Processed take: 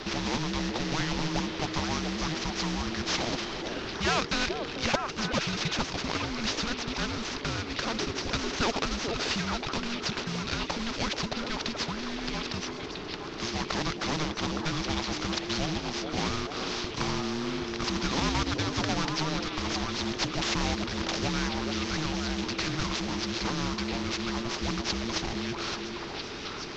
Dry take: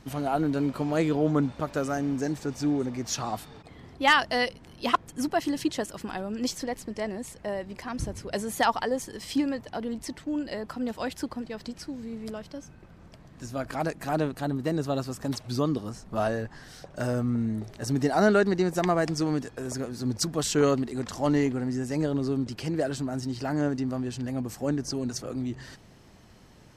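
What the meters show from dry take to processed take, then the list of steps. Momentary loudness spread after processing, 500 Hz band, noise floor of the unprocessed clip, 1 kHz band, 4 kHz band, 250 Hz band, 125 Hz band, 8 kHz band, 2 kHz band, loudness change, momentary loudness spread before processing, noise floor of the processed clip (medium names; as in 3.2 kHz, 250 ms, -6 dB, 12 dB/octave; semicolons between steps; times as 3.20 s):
4 LU, -6.0 dB, -52 dBFS, -2.0 dB, +7.0 dB, -4.0 dB, -2.5 dB, +1.5 dB, +1.0 dB, -1.5 dB, 11 LU, -38 dBFS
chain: CVSD coder 32 kbps; in parallel at +2.5 dB: compression, threshold -36 dBFS, peak gain reduction 18.5 dB; on the sum: frequency shift -470 Hz; on a send: repeats whose band climbs or falls 432 ms, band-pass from 410 Hz, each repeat 1.4 oct, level -3 dB; on the sum: spectrum-flattening compressor 2:1; trim -5.5 dB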